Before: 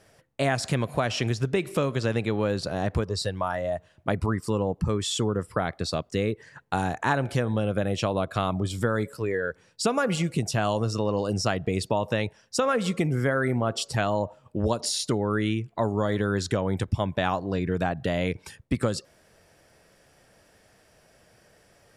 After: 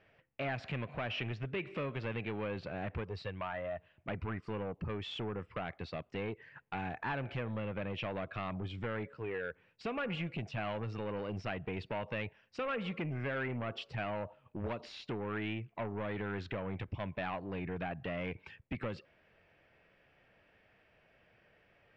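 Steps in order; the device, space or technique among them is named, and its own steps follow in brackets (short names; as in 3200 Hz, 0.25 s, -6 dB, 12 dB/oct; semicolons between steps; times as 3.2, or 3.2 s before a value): 8.76–9.81 high shelf 3700 Hz -6.5 dB; overdriven synthesiser ladder filter (soft clip -23 dBFS, distortion -11 dB; ladder low-pass 3000 Hz, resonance 50%)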